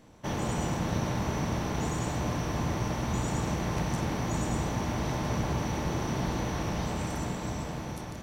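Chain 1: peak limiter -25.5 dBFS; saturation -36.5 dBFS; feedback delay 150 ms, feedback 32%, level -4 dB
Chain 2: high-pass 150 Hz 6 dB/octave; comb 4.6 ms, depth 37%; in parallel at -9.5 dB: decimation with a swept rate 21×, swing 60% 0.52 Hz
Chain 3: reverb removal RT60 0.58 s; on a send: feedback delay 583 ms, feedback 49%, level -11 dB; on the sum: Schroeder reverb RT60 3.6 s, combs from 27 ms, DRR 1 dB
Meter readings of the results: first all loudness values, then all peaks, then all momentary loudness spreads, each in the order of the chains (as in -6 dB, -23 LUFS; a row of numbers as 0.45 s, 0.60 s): -38.0 LUFS, -31.0 LUFS, -30.5 LUFS; -31.0 dBFS, -17.0 dBFS, -16.5 dBFS; 1 LU, 3 LU, 3 LU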